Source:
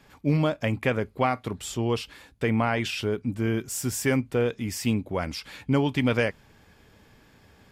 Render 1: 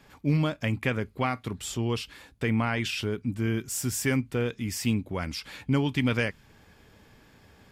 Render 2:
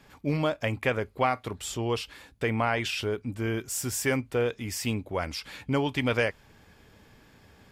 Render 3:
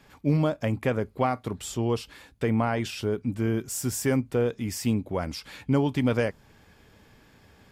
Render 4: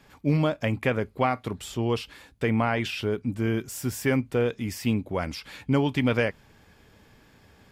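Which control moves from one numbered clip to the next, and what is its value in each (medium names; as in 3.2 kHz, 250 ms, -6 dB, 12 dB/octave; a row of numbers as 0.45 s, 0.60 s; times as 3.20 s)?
dynamic bell, frequency: 620 Hz, 190 Hz, 2.5 kHz, 7.5 kHz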